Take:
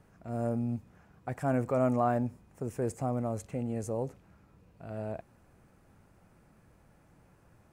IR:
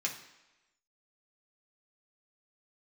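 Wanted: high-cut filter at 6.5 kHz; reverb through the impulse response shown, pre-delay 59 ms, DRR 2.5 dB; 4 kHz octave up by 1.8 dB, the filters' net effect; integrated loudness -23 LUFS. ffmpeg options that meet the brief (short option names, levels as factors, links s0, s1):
-filter_complex "[0:a]lowpass=6500,equalizer=f=4000:t=o:g=3.5,asplit=2[s0][s1];[1:a]atrim=start_sample=2205,adelay=59[s2];[s1][s2]afir=irnorm=-1:irlink=0,volume=0.473[s3];[s0][s3]amix=inputs=2:normalize=0,volume=2.99"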